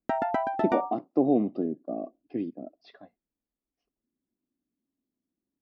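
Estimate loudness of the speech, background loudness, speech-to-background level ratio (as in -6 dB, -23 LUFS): -29.5 LUFS, -30.0 LUFS, 0.5 dB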